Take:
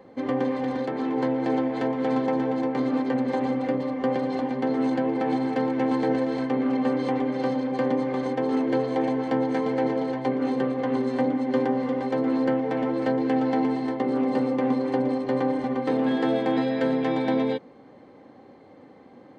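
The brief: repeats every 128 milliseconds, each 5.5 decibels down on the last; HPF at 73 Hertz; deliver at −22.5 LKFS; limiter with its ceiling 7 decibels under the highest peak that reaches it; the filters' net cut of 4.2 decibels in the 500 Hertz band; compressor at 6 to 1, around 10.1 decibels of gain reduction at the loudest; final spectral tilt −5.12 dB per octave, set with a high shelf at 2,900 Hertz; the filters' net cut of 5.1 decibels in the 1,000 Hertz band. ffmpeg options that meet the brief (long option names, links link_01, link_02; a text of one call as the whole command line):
ffmpeg -i in.wav -af "highpass=73,equalizer=frequency=500:width_type=o:gain=-3.5,equalizer=frequency=1000:width_type=o:gain=-6,highshelf=frequency=2900:gain=4,acompressor=threshold=-33dB:ratio=6,alimiter=level_in=5dB:limit=-24dB:level=0:latency=1,volume=-5dB,aecho=1:1:128|256|384|512|640|768|896:0.531|0.281|0.149|0.079|0.0419|0.0222|0.0118,volume=15dB" out.wav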